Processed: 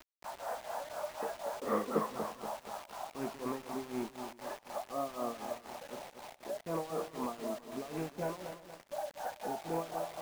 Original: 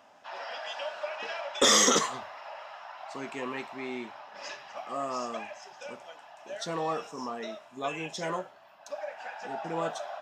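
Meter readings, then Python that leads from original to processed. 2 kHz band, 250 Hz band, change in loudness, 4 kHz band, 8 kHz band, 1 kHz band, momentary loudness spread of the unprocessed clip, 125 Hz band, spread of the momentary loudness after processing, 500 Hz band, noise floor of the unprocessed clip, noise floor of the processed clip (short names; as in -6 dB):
-12.5 dB, -2.5 dB, -9.0 dB, -19.5 dB, -20.5 dB, -5.0 dB, 19 LU, -1.5 dB, 10 LU, -3.5 dB, -55 dBFS, -59 dBFS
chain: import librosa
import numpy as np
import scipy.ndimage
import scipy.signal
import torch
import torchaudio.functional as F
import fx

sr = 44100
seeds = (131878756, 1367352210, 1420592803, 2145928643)

p1 = fx.rattle_buzz(x, sr, strikes_db=-41.0, level_db=-23.0)
p2 = scipy.signal.sosfilt(scipy.signal.bessel(4, 850.0, 'lowpass', norm='mag', fs=sr, output='sos'), p1)
p3 = fx.low_shelf(p2, sr, hz=100.0, db=-5.5)
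p4 = fx.over_compress(p3, sr, threshold_db=-42.0, ratio=-1.0)
p5 = p3 + F.gain(torch.from_numpy(p4), -2.0).numpy()
p6 = p5 * (1.0 - 0.86 / 2.0 + 0.86 / 2.0 * np.cos(2.0 * np.pi * 4.0 * (np.arange(len(p5)) / sr)))
p7 = fx.quant_dither(p6, sr, seeds[0], bits=8, dither='none')
p8 = p7 + fx.echo_single(p7, sr, ms=339, db=-22.0, dry=0)
p9 = fx.echo_crushed(p8, sr, ms=237, feedback_pct=55, bits=8, wet_db=-9.0)
y = F.gain(torch.from_numpy(p9), -1.0).numpy()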